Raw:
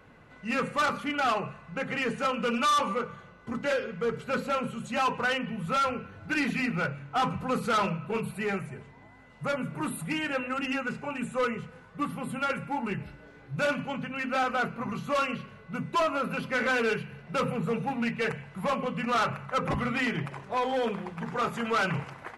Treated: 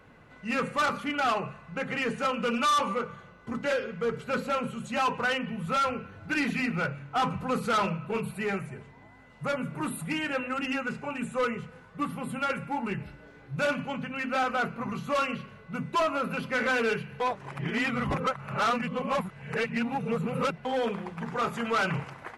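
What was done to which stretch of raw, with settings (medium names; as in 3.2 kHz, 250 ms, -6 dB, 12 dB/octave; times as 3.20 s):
17.20–20.65 s: reverse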